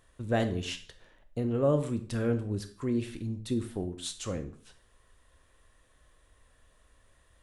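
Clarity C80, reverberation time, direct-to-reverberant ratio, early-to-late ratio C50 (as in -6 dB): 16.5 dB, 0.45 s, 8.0 dB, 12.0 dB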